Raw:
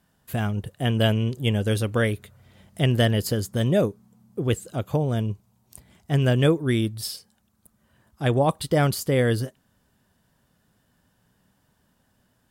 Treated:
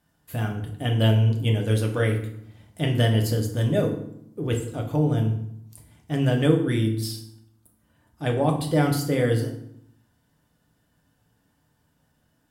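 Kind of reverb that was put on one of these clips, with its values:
feedback delay network reverb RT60 0.69 s, low-frequency decay 1.45×, high-frequency decay 0.75×, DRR 1 dB
level −4.5 dB

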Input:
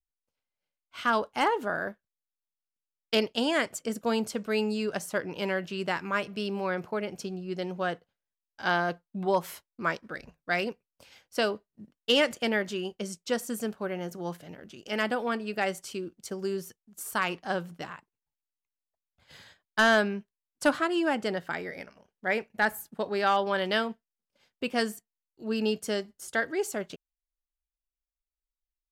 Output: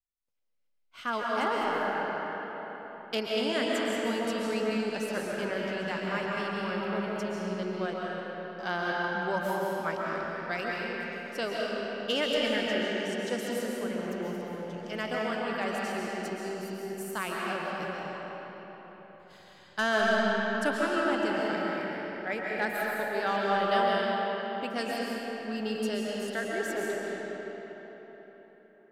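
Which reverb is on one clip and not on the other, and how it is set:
comb and all-pass reverb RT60 4.5 s, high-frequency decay 0.65×, pre-delay 95 ms, DRR −4.5 dB
level −6.5 dB

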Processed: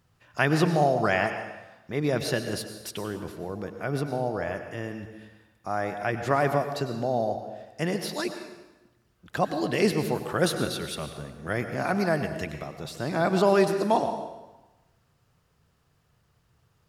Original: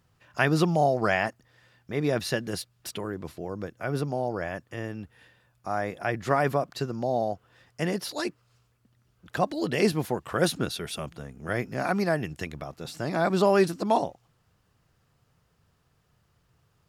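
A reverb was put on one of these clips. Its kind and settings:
dense smooth reverb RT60 1.1 s, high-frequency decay 0.85×, pre-delay 85 ms, DRR 7.5 dB

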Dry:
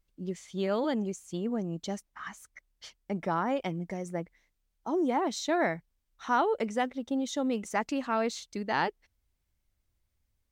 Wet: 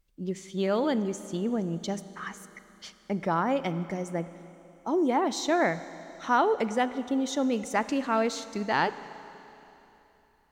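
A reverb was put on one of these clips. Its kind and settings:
four-comb reverb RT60 3.3 s, combs from 32 ms, DRR 13.5 dB
level +3 dB

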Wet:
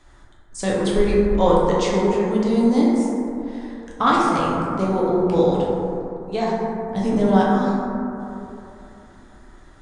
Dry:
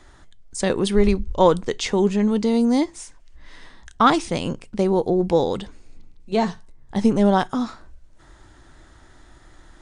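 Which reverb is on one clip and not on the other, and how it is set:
dense smooth reverb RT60 3 s, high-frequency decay 0.25×, DRR −5.5 dB
level −5.5 dB

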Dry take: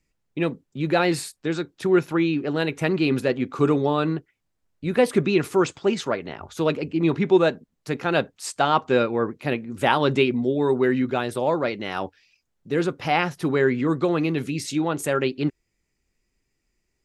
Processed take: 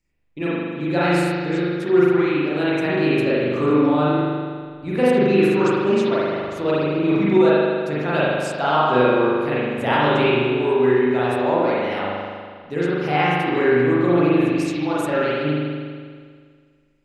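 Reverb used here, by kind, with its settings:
spring reverb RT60 1.9 s, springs 40 ms, chirp 40 ms, DRR −9 dB
level −5.5 dB

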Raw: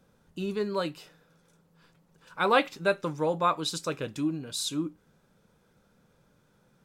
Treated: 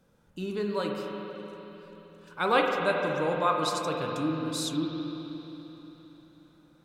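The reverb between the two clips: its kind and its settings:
spring reverb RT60 3.8 s, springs 44/48 ms, chirp 70 ms, DRR 0.5 dB
level −2 dB

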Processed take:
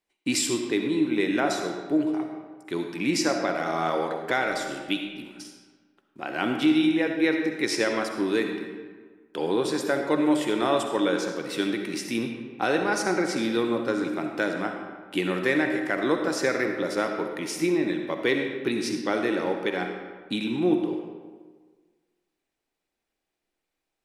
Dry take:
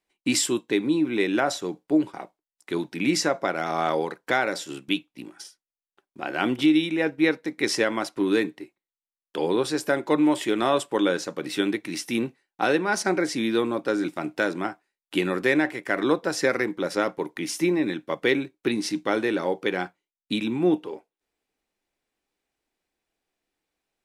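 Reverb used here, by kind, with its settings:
comb and all-pass reverb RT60 1.5 s, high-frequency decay 0.65×, pre-delay 25 ms, DRR 4 dB
level −2.5 dB

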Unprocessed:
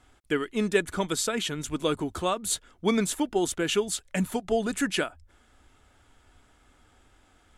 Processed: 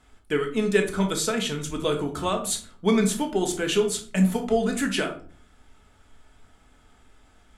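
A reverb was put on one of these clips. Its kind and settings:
rectangular room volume 400 cubic metres, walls furnished, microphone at 1.5 metres

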